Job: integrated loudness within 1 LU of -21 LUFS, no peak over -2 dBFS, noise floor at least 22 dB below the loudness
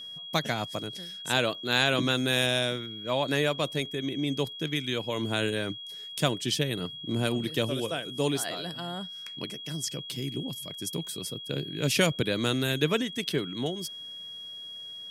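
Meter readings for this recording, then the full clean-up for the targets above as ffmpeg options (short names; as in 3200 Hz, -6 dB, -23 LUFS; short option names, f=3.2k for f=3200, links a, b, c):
steady tone 3300 Hz; tone level -39 dBFS; loudness -29.5 LUFS; peak -8.0 dBFS; loudness target -21.0 LUFS
-> -af "bandreject=f=3.3k:w=30"
-af "volume=8.5dB,alimiter=limit=-2dB:level=0:latency=1"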